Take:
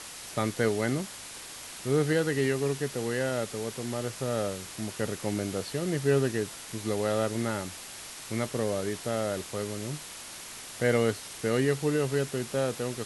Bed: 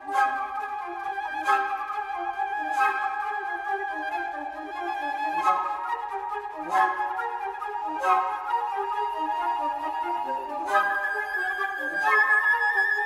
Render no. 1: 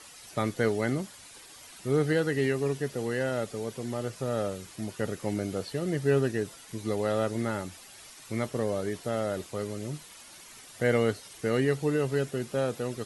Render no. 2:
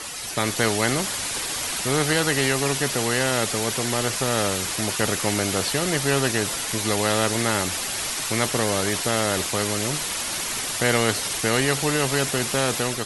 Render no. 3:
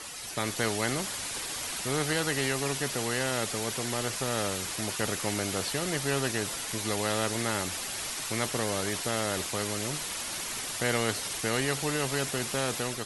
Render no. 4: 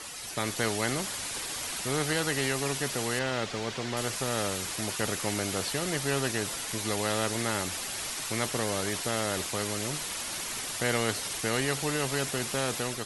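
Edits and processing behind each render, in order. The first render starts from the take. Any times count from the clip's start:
broadband denoise 10 dB, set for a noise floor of −43 dBFS
automatic gain control gain up to 7 dB; every bin compressed towards the loudest bin 2 to 1
level −7.5 dB
0:03.19–0:03.97: low-pass filter 4,800 Hz

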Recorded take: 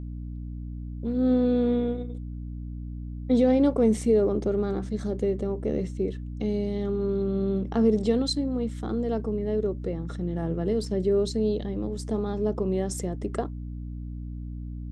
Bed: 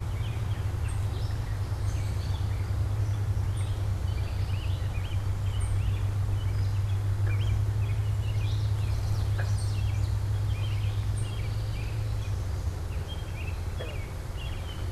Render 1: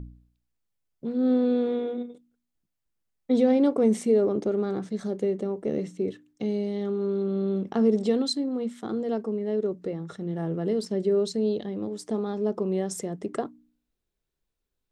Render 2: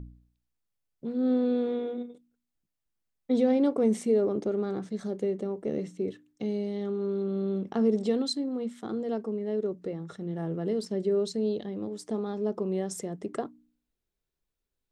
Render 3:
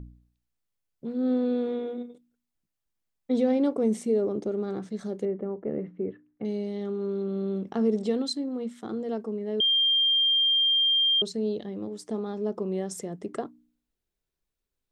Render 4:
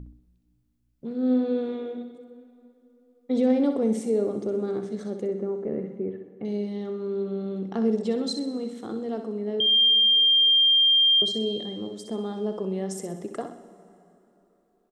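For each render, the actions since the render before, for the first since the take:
hum removal 60 Hz, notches 5
level −3 dB
0:03.76–0:04.68: parametric band 1,800 Hz −3.5 dB 2.4 octaves; 0:05.25–0:06.45: low-pass filter 2,000 Hz 24 dB per octave; 0:09.60–0:11.22: beep over 3,190 Hz −19.5 dBFS
repeating echo 63 ms, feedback 41%, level −8.5 dB; dense smooth reverb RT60 3.4 s, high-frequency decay 0.7×, pre-delay 90 ms, DRR 15 dB

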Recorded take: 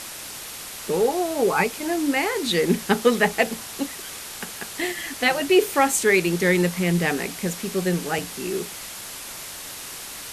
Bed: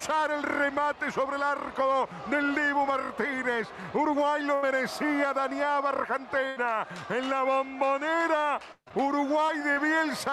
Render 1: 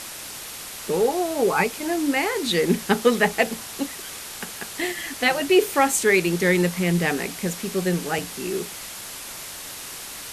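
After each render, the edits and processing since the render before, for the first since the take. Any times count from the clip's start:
no processing that can be heard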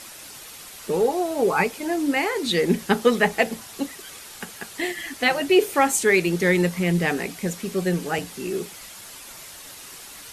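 broadband denoise 7 dB, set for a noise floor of −37 dBFS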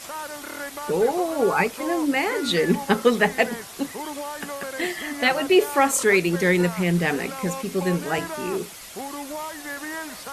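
mix in bed −7.5 dB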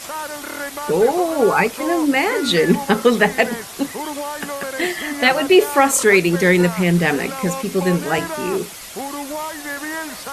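level +5.5 dB
brickwall limiter −2 dBFS, peak gain reduction 2.5 dB

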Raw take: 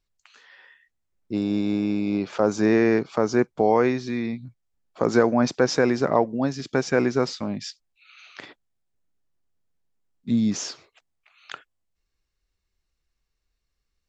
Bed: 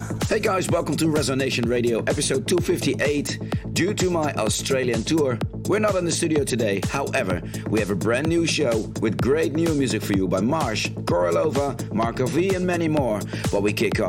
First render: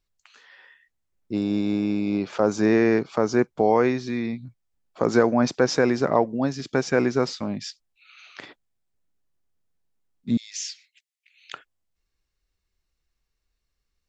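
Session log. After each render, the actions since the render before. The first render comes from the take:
0:10.37–0:11.53: Butterworth high-pass 1,900 Hz 48 dB per octave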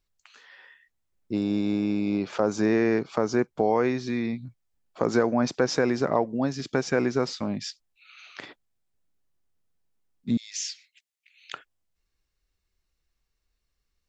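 downward compressor 1.5 to 1, threshold −24 dBFS, peak gain reduction 4.5 dB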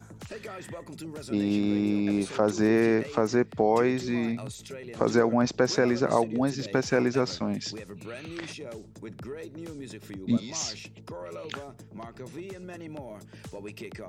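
mix in bed −19 dB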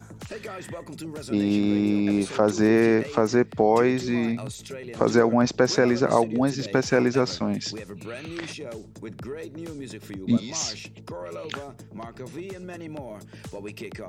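level +3.5 dB

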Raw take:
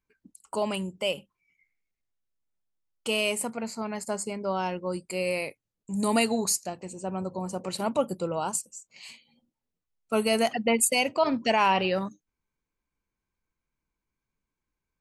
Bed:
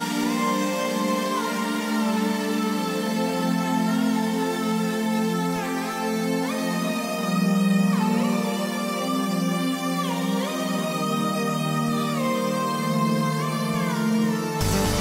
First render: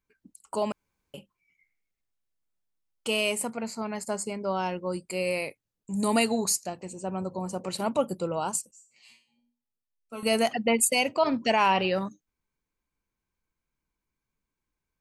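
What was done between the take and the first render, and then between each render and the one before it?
0:00.72–0:01.14: fill with room tone
0:08.71–0:10.23: tuned comb filter 120 Hz, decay 0.39 s, mix 90%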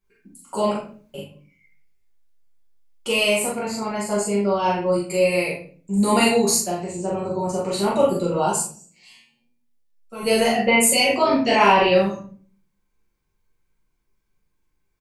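double-tracking delay 40 ms −2 dB
rectangular room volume 37 cubic metres, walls mixed, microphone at 0.99 metres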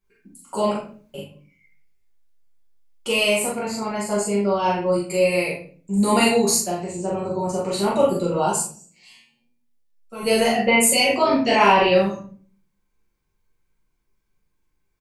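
no processing that can be heard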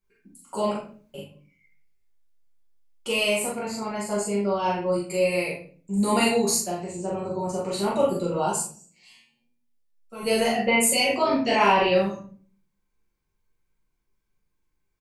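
level −4 dB

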